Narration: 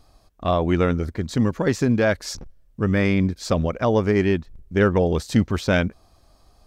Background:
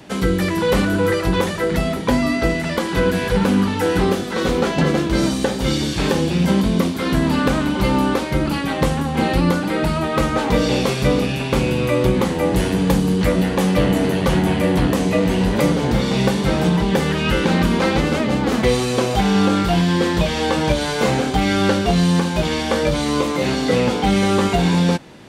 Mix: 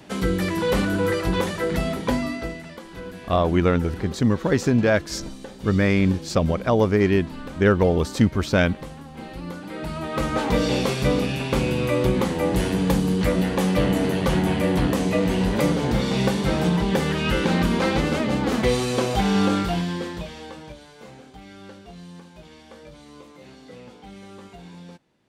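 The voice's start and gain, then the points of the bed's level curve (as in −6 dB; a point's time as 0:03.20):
2.85 s, +0.5 dB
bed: 0:02.07 −4.5 dB
0:02.80 −19 dB
0:09.35 −19 dB
0:10.38 −4 dB
0:19.53 −4 dB
0:20.90 −26 dB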